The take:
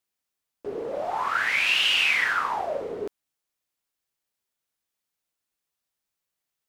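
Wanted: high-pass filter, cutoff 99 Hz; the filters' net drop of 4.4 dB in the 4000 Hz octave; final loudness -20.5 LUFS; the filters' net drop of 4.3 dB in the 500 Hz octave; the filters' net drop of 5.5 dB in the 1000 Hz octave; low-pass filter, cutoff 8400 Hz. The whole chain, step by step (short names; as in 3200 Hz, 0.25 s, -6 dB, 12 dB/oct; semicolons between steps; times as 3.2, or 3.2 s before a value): HPF 99 Hz; LPF 8400 Hz; bell 500 Hz -3.5 dB; bell 1000 Hz -6 dB; bell 4000 Hz -6.5 dB; gain +6 dB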